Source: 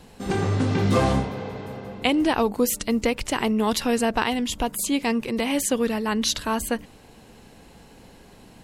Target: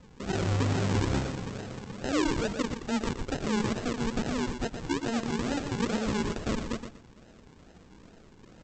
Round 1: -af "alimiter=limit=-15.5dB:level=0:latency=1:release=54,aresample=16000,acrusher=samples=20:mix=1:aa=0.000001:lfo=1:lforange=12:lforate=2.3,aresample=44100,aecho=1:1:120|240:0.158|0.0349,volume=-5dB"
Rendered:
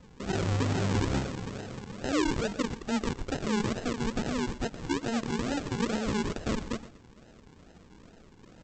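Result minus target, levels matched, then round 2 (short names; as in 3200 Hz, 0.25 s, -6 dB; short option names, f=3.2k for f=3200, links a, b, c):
echo-to-direct -7.5 dB
-af "alimiter=limit=-15.5dB:level=0:latency=1:release=54,aresample=16000,acrusher=samples=20:mix=1:aa=0.000001:lfo=1:lforange=12:lforate=2.3,aresample=44100,aecho=1:1:120|240|360:0.376|0.0827|0.0182,volume=-5dB"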